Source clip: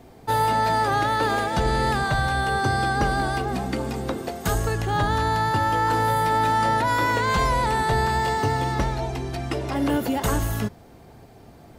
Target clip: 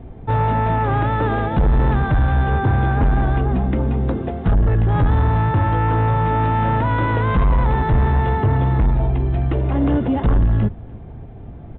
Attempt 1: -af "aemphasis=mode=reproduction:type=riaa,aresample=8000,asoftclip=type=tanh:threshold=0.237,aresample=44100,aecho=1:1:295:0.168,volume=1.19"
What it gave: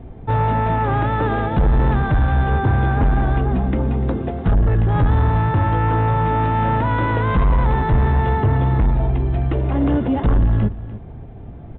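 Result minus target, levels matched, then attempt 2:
echo-to-direct +8.5 dB
-af "aemphasis=mode=reproduction:type=riaa,aresample=8000,asoftclip=type=tanh:threshold=0.237,aresample=44100,aecho=1:1:295:0.0631,volume=1.19"

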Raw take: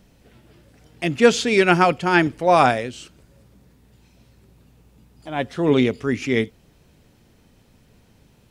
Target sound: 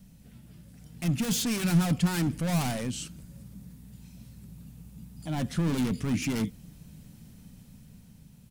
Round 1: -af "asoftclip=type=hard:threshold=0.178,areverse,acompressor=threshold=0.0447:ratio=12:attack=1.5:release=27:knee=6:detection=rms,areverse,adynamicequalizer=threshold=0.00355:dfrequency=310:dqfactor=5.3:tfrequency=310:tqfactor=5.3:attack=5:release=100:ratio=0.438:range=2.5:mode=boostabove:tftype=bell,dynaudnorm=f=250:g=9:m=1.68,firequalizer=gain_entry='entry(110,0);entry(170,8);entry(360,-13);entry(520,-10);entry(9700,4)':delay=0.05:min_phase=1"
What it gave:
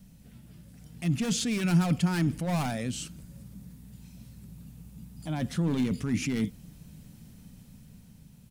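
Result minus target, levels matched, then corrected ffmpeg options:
hard clipper: distortion -6 dB
-af "asoftclip=type=hard:threshold=0.0501,areverse,acompressor=threshold=0.0447:ratio=12:attack=1.5:release=27:knee=6:detection=rms,areverse,adynamicequalizer=threshold=0.00355:dfrequency=310:dqfactor=5.3:tfrequency=310:tqfactor=5.3:attack=5:release=100:ratio=0.438:range=2.5:mode=boostabove:tftype=bell,dynaudnorm=f=250:g=9:m=1.68,firequalizer=gain_entry='entry(110,0);entry(170,8);entry(360,-13);entry(520,-10);entry(9700,4)':delay=0.05:min_phase=1"

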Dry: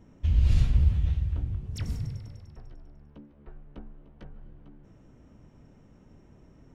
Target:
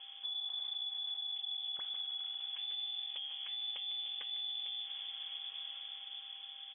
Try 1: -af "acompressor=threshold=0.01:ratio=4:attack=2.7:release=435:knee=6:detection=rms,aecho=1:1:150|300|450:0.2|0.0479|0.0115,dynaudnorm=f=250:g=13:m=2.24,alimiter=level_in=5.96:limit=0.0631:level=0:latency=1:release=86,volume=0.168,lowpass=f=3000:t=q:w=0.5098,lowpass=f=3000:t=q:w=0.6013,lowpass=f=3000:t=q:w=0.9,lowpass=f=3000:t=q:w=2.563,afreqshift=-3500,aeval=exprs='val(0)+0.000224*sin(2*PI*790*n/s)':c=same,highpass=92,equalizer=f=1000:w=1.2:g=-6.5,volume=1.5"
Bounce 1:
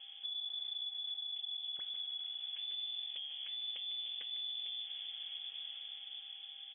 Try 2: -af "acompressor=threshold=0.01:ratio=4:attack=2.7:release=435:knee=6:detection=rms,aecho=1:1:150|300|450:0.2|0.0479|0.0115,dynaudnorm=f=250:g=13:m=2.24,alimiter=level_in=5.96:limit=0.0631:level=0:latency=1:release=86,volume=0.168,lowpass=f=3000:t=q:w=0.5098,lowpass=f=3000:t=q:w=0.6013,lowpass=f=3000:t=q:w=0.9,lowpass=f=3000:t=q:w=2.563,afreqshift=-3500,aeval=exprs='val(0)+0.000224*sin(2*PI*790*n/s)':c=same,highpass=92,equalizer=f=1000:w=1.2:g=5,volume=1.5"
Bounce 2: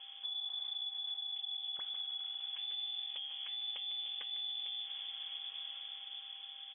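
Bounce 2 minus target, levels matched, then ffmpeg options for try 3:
compression: peak gain reduction +4.5 dB
-af "acompressor=threshold=0.02:ratio=4:attack=2.7:release=435:knee=6:detection=rms,aecho=1:1:150|300|450:0.2|0.0479|0.0115,dynaudnorm=f=250:g=13:m=2.24,alimiter=level_in=5.96:limit=0.0631:level=0:latency=1:release=86,volume=0.168,lowpass=f=3000:t=q:w=0.5098,lowpass=f=3000:t=q:w=0.6013,lowpass=f=3000:t=q:w=0.9,lowpass=f=3000:t=q:w=2.563,afreqshift=-3500,aeval=exprs='val(0)+0.000224*sin(2*PI*790*n/s)':c=same,highpass=92,equalizer=f=1000:w=1.2:g=5,volume=1.5"

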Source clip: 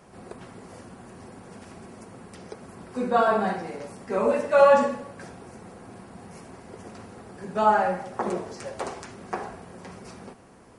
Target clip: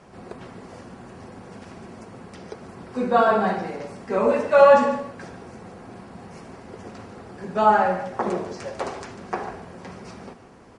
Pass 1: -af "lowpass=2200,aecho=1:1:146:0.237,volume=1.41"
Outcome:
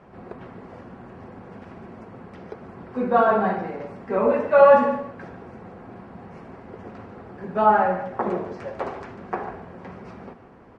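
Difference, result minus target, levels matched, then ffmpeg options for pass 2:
8 kHz band -17.0 dB
-af "lowpass=6500,aecho=1:1:146:0.237,volume=1.41"

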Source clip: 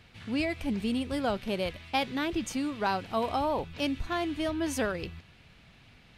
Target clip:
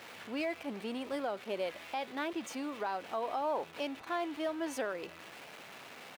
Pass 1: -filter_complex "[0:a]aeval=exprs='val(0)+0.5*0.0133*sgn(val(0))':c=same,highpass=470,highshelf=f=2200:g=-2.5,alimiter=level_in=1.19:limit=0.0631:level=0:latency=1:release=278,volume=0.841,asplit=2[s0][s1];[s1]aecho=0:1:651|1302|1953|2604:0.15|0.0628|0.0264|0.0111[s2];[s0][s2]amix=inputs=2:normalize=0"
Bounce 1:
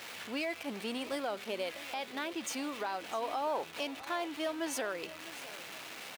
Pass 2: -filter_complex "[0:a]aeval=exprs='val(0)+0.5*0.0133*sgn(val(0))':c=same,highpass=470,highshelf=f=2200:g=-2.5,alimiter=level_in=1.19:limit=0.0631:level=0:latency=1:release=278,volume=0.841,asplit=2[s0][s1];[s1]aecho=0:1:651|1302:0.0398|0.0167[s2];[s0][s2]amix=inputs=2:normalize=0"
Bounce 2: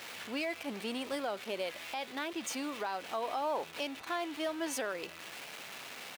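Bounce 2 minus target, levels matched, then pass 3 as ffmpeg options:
4 kHz band +5.0 dB
-filter_complex "[0:a]aeval=exprs='val(0)+0.5*0.0133*sgn(val(0))':c=same,highpass=470,highshelf=f=2200:g=-11.5,alimiter=level_in=1.19:limit=0.0631:level=0:latency=1:release=278,volume=0.841,asplit=2[s0][s1];[s1]aecho=0:1:651|1302:0.0398|0.0167[s2];[s0][s2]amix=inputs=2:normalize=0"

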